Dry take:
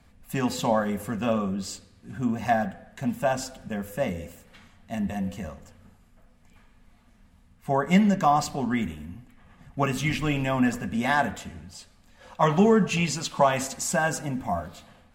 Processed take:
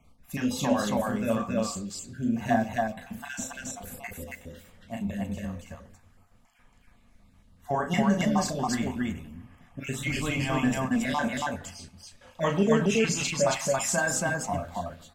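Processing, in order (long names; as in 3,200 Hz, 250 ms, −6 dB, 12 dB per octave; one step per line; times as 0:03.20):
time-frequency cells dropped at random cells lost 30%
dynamic equaliser 7,000 Hz, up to +5 dB, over −52 dBFS, Q 1.6
0:03.62–0:04.14: compressor whose output falls as the input rises −39 dBFS, ratio −0.5
loudspeakers that aren't time-aligned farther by 12 metres −5 dB, 95 metres −1 dB
on a send at −12.5 dB: convolution reverb RT60 0.35 s, pre-delay 3 ms
on the sum: level −3.5 dB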